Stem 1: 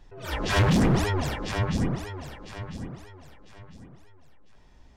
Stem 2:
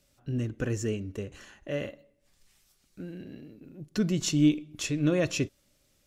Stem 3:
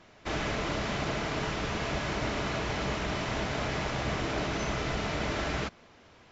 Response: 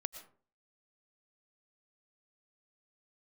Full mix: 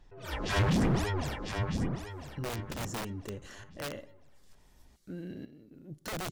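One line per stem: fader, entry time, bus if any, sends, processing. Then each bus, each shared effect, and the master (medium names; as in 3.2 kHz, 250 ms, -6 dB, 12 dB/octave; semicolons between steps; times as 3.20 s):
-6.0 dB, 0.00 s, no bus, no send, none
+1.5 dB, 2.10 s, bus A, no send, peaking EQ 2.5 kHz -8.5 dB 0.22 oct; integer overflow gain 25 dB
mute
bus A: 0.0 dB, tremolo saw up 1.1 Hz, depth 70%; peak limiter -31.5 dBFS, peak gain reduction 8 dB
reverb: none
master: none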